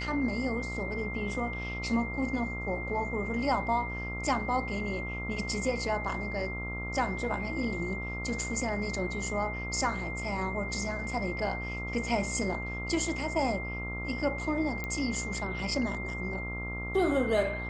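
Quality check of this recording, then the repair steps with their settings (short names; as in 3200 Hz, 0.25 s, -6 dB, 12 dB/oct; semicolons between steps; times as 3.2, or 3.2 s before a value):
buzz 60 Hz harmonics 23 -38 dBFS
tone 2100 Hz -37 dBFS
14.84 pop -20 dBFS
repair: de-click; de-hum 60 Hz, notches 23; notch 2100 Hz, Q 30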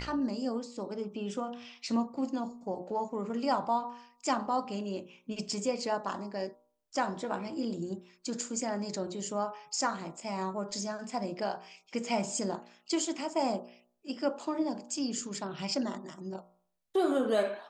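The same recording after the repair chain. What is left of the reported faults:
none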